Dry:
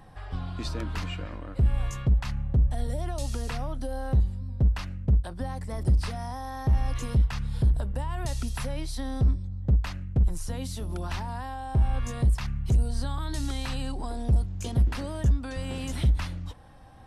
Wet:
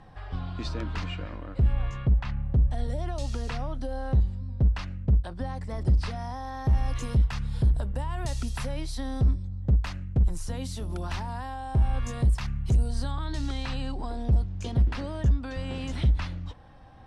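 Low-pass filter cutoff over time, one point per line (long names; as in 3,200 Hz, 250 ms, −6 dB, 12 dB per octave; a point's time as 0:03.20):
5,600 Hz
from 0:01.73 3,200 Hz
from 0:02.53 6,000 Hz
from 0:06.65 9,800 Hz
from 0:13.11 5,100 Hz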